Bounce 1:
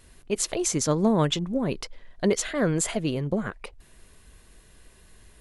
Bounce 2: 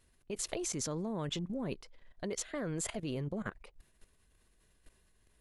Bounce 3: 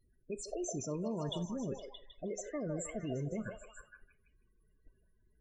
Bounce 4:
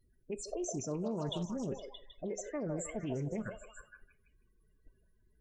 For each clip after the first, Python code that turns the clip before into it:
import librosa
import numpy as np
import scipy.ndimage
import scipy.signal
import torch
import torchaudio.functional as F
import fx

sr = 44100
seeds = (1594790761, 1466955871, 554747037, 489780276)

y1 = fx.level_steps(x, sr, step_db=16)
y1 = y1 * librosa.db_to_amplitude(-4.5)
y2 = fx.spec_topn(y1, sr, count=16)
y2 = fx.echo_stepped(y2, sr, ms=156, hz=700.0, octaves=0.7, feedback_pct=70, wet_db=-1.0)
y2 = fx.rev_gated(y2, sr, seeds[0], gate_ms=110, shape='falling', drr_db=11.5)
y2 = y2 * librosa.db_to_amplitude(-1.0)
y3 = fx.doppler_dist(y2, sr, depth_ms=0.16)
y3 = y3 * librosa.db_to_amplitude(1.0)